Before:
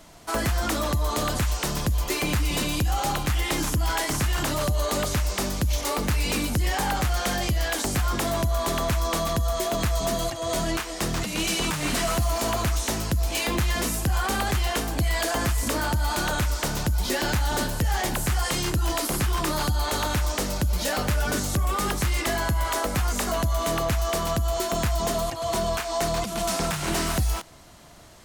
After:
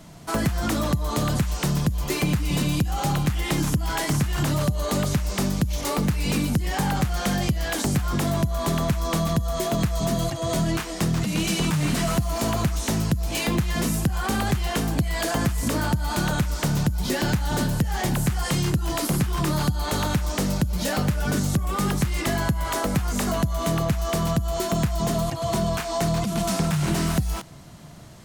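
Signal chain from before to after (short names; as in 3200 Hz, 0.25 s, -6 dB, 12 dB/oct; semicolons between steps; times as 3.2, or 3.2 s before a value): bell 150 Hz +13 dB 1.4 oct; compressor, threshold -19 dBFS, peak gain reduction 8.5 dB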